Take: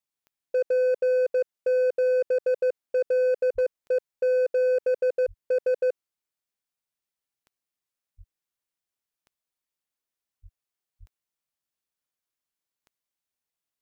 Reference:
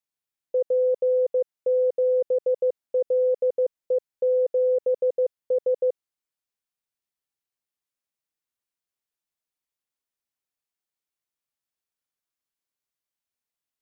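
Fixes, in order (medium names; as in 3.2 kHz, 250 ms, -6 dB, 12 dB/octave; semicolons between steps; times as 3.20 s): clip repair -19.5 dBFS; de-click; de-plosive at 3.54/5.27/8.17/10.42/10.99 s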